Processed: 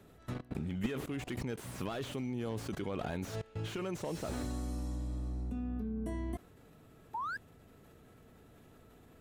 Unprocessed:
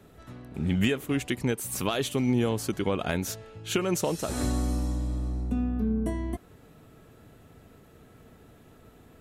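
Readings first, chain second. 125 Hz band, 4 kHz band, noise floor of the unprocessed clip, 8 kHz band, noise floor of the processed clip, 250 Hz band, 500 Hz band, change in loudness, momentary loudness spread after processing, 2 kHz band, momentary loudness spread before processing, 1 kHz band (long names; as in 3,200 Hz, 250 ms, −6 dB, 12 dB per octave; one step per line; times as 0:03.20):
−8.5 dB, −12.5 dB, −55 dBFS, −15.5 dB, −60 dBFS, −10.0 dB, −10.0 dB, −10.5 dB, 4 LU, −9.5 dB, 9 LU, −6.0 dB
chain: sound drawn into the spectrogram rise, 0:07.14–0:07.37, 850–1,700 Hz −31 dBFS
output level in coarse steps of 22 dB
slew-rate limiting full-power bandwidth 9.1 Hz
level +7 dB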